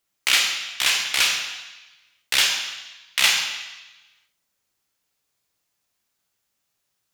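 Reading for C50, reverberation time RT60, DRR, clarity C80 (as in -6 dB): 4.5 dB, 1.1 s, 1.5 dB, 6.5 dB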